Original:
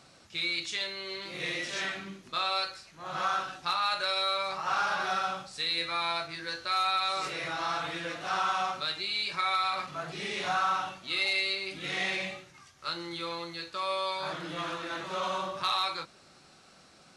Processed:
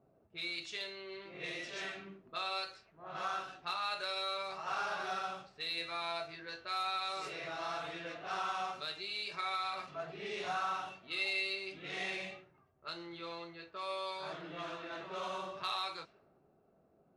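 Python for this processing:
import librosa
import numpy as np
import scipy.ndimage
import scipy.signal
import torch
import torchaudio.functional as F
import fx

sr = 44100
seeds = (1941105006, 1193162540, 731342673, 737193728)

y = fx.env_lowpass(x, sr, base_hz=530.0, full_db=-29.0)
y = fx.cheby_harmonics(y, sr, harmonics=(3,), levels_db=(-27,), full_scale_db=-18.5)
y = fx.small_body(y, sr, hz=(420.0, 650.0, 2700.0), ring_ms=45, db=9)
y = y * librosa.db_to_amplitude(-8.0)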